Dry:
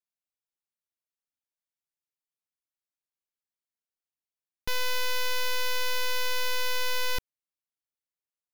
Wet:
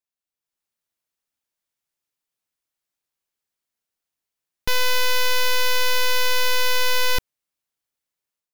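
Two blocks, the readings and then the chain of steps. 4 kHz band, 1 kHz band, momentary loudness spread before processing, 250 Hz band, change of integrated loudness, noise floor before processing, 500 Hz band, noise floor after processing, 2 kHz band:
+8.5 dB, +8.5 dB, 4 LU, +8.5 dB, +8.5 dB, under -85 dBFS, +8.5 dB, under -85 dBFS, +8.5 dB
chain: level rider gain up to 8.5 dB

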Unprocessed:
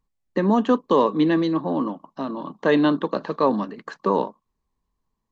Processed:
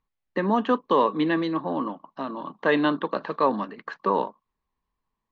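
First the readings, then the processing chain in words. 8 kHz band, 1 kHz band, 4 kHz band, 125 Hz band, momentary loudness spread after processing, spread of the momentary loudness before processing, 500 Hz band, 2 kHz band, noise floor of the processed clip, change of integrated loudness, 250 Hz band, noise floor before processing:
no reading, 0.0 dB, -1.5 dB, -6.0 dB, 12 LU, 12 LU, -3.5 dB, +1.5 dB, -83 dBFS, -3.5 dB, -5.0 dB, -79 dBFS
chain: low-pass 3 kHz 12 dB/octave; tilt shelf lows -5 dB, about 730 Hz; trim -1.5 dB

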